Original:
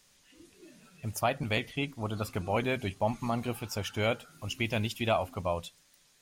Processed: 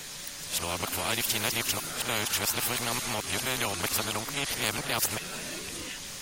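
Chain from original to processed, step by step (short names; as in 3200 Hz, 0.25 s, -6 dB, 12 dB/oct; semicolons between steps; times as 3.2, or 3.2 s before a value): whole clip reversed; pre-echo 33 ms -14 dB; spectral compressor 4:1; gain +5 dB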